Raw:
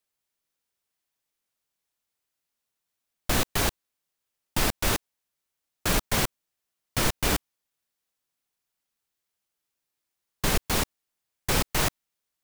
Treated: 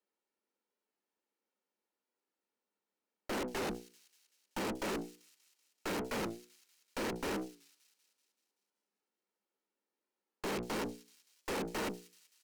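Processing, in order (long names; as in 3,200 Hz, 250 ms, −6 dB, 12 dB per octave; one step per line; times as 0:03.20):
loose part that buzzes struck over −36 dBFS, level −22 dBFS
Butterworth high-pass 190 Hz 96 dB per octave
spectral tilt −4.5 dB per octave
mains-hum notches 60/120/180/240/300/360/420/480 Hz
comb filter 2.2 ms, depth 39%
tube saturation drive 38 dB, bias 0.75
notch filter 3,500 Hz, Q 19
on a send: delay with a high-pass on its return 191 ms, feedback 58%, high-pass 4,600 Hz, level −13 dB
on the sum: wow of a warped record 45 rpm, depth 100 cents
level +3 dB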